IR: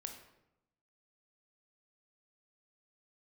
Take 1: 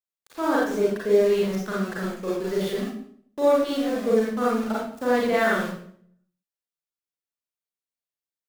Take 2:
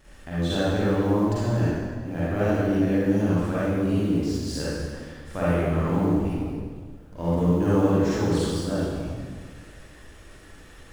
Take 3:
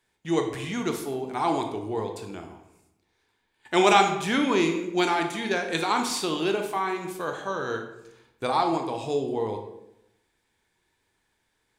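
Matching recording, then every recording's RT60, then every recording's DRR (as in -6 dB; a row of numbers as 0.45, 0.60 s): 3; 0.60, 1.8, 0.85 s; -6.5, -10.0, 4.0 dB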